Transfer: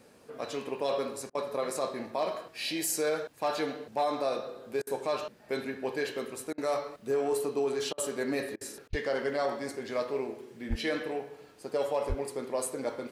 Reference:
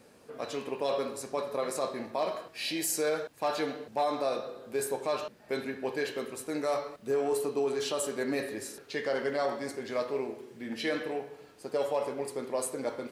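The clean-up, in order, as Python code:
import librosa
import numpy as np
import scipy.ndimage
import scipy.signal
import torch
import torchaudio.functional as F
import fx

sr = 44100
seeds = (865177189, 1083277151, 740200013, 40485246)

y = fx.highpass(x, sr, hz=140.0, slope=24, at=(8.89, 9.01), fade=0.02)
y = fx.highpass(y, sr, hz=140.0, slope=24, at=(10.69, 10.81), fade=0.02)
y = fx.highpass(y, sr, hz=140.0, slope=24, at=(12.08, 12.2), fade=0.02)
y = fx.fix_interpolate(y, sr, at_s=(1.3, 4.82, 6.53, 7.93, 8.56, 8.88), length_ms=48.0)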